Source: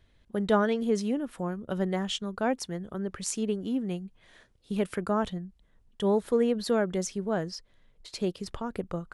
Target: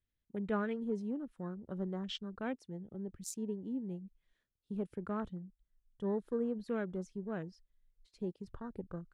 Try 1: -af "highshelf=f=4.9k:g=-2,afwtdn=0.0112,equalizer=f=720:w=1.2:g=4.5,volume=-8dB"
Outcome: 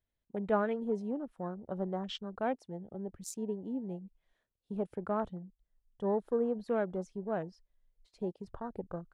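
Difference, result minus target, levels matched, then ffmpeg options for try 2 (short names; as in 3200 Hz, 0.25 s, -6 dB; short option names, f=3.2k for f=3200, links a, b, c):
1000 Hz band +4.5 dB
-af "highshelf=f=4.9k:g=-2,afwtdn=0.0112,equalizer=f=720:w=1.2:g=-7,volume=-8dB"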